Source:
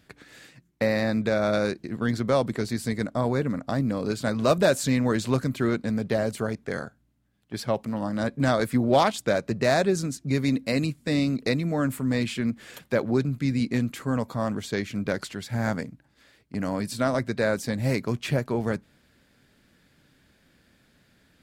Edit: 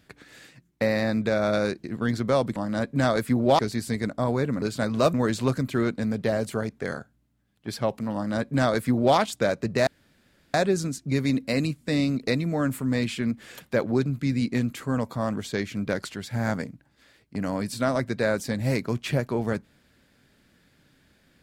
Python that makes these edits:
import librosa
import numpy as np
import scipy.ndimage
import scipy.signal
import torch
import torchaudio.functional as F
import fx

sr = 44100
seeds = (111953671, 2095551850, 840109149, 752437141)

y = fx.edit(x, sr, fx.cut(start_s=3.59, length_s=0.48),
    fx.cut(start_s=4.59, length_s=0.41),
    fx.duplicate(start_s=8.0, length_s=1.03, to_s=2.56),
    fx.insert_room_tone(at_s=9.73, length_s=0.67), tone=tone)